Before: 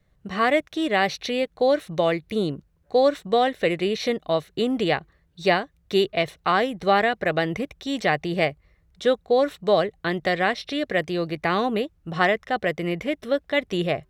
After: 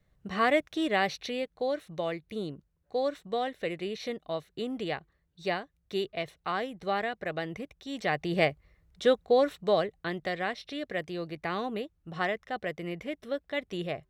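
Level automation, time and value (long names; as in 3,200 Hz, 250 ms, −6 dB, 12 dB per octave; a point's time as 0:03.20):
0:00.82 −4.5 dB
0:01.71 −11 dB
0:07.88 −11 dB
0:08.37 −3 dB
0:09.27 −3 dB
0:10.34 −10 dB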